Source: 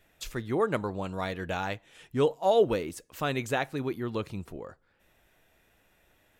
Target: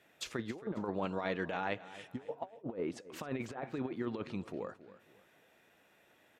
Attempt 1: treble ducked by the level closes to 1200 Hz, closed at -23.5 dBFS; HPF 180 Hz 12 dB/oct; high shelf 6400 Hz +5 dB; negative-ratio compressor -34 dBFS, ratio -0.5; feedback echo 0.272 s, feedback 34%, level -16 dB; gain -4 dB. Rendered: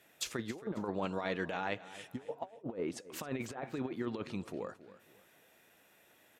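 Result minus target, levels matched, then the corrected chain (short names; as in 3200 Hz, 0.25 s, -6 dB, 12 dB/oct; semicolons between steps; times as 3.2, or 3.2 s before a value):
8000 Hz band +6.5 dB
treble ducked by the level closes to 1200 Hz, closed at -23.5 dBFS; HPF 180 Hz 12 dB/oct; high shelf 6400 Hz -7 dB; negative-ratio compressor -34 dBFS, ratio -0.5; feedback echo 0.272 s, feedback 34%, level -16 dB; gain -4 dB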